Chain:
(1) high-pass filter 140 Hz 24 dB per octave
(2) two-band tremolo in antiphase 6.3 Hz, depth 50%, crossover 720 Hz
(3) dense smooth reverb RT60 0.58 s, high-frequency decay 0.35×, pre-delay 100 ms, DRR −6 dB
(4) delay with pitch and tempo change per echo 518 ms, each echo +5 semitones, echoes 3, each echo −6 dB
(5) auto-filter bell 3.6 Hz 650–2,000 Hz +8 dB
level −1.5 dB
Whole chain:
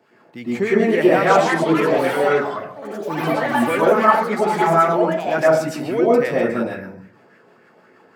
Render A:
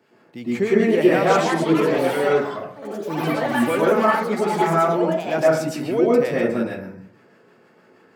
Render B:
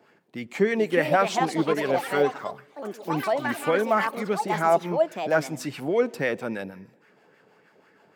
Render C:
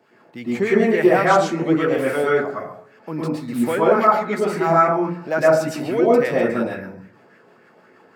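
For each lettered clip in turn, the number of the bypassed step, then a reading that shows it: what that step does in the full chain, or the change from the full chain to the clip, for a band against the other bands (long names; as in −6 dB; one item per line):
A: 5, change in integrated loudness −2.0 LU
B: 3, change in momentary loudness spread +2 LU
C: 4, change in integrated loudness −1.0 LU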